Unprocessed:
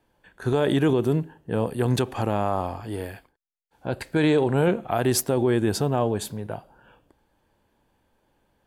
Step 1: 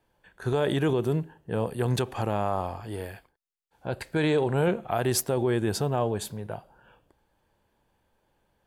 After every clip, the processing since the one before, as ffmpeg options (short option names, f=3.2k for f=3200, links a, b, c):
-af "equalizer=f=270:t=o:w=0.53:g=-5,volume=-2.5dB"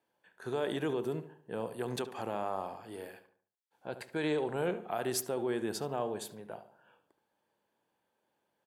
-filter_complex "[0:a]highpass=220,asplit=2[a][b];[b]adelay=72,lowpass=f=2k:p=1,volume=-11dB,asplit=2[c][d];[d]adelay=72,lowpass=f=2k:p=1,volume=0.44,asplit=2[e][f];[f]adelay=72,lowpass=f=2k:p=1,volume=0.44,asplit=2[g][h];[h]adelay=72,lowpass=f=2k:p=1,volume=0.44,asplit=2[i][j];[j]adelay=72,lowpass=f=2k:p=1,volume=0.44[k];[c][e][g][i][k]amix=inputs=5:normalize=0[l];[a][l]amix=inputs=2:normalize=0,volume=-7.5dB"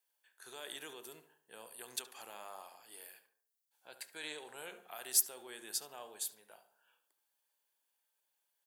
-af "aderivative,bandreject=f=88.78:t=h:w=4,bandreject=f=177.56:t=h:w=4,bandreject=f=266.34:t=h:w=4,bandreject=f=355.12:t=h:w=4,bandreject=f=443.9:t=h:w=4,bandreject=f=532.68:t=h:w=4,bandreject=f=621.46:t=h:w=4,bandreject=f=710.24:t=h:w=4,bandreject=f=799.02:t=h:w=4,bandreject=f=887.8:t=h:w=4,bandreject=f=976.58:t=h:w=4,bandreject=f=1.06536k:t=h:w=4,bandreject=f=1.15414k:t=h:w=4,bandreject=f=1.24292k:t=h:w=4,bandreject=f=1.3317k:t=h:w=4,bandreject=f=1.42048k:t=h:w=4,bandreject=f=1.50926k:t=h:w=4,bandreject=f=1.59804k:t=h:w=4,bandreject=f=1.68682k:t=h:w=4,bandreject=f=1.7756k:t=h:w=4,bandreject=f=1.86438k:t=h:w=4,volume=5.5dB"